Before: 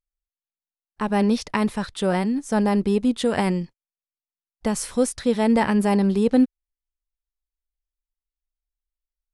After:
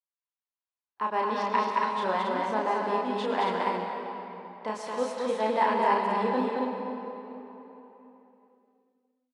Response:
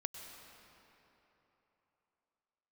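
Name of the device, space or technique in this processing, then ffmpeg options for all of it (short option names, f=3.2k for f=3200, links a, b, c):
station announcement: -filter_complex "[0:a]highpass=430,lowpass=3.7k,equalizer=f=1k:t=o:w=0.28:g=11.5,aecho=1:1:32.07|221.6|277:0.708|0.794|0.631[a];[1:a]atrim=start_sample=2205[b];[a][b]afir=irnorm=-1:irlink=0,volume=-5dB"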